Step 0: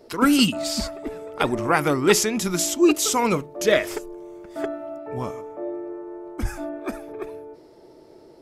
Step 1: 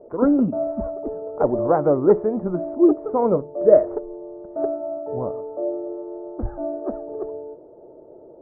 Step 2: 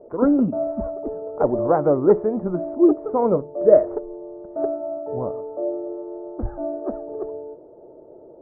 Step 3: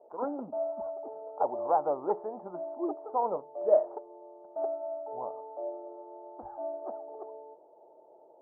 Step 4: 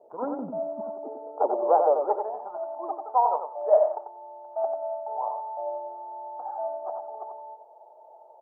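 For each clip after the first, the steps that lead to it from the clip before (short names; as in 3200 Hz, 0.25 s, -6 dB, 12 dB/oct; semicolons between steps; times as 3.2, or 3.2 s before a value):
Bessel low-pass 730 Hz, order 8; bell 570 Hz +11.5 dB 0.91 oct; gain -1 dB
nothing audible
band-pass 840 Hz, Q 4.3
high-pass sweep 110 Hz -> 780 Hz, 0.07–2.4; on a send: feedback echo 92 ms, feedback 18%, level -6 dB; on the sum: gain +1.5 dB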